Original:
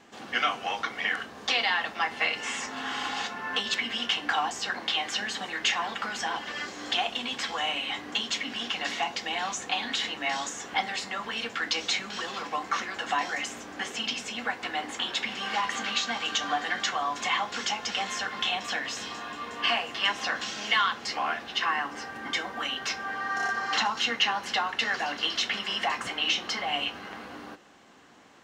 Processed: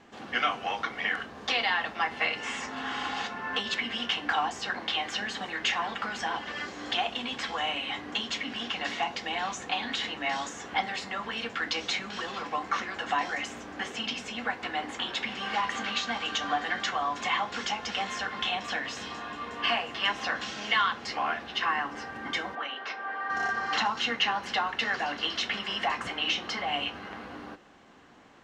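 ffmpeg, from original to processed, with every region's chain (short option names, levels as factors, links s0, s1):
-filter_complex "[0:a]asettb=1/sr,asplit=3[s0][s1][s2];[s0]atrim=end=22.554[s3];[s1]atrim=start=22.55:end=23.3,asetpts=PTS-STARTPTS,afade=t=in:d=0.004:c=qsin,afade=t=out:st=0.746:d=0.004:c=qsin,highpass=440,lowpass=5400,aemphasis=mode=reproduction:type=75fm[s4];[s2]atrim=start=23.296[s5];[s3][s4]acrossfade=d=0.004:c1=hsin:c2=qsin[s6];[s6][s5]acrossfade=d=0.004:c1=qsin:c2=hsin,lowpass=f=3600:p=1,lowshelf=f=81:g=9"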